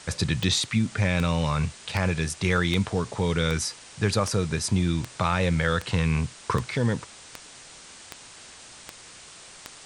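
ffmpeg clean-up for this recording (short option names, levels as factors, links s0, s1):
-af "adeclick=t=4,afwtdn=0.0071"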